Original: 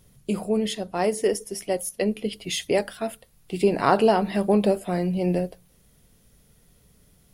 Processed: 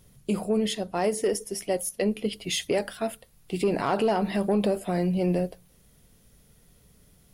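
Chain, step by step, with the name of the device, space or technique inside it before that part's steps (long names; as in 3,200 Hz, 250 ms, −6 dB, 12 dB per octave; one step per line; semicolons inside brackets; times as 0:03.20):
soft clipper into limiter (soft clipping −10.5 dBFS, distortion −20 dB; brickwall limiter −16.5 dBFS, peak gain reduction 5.5 dB)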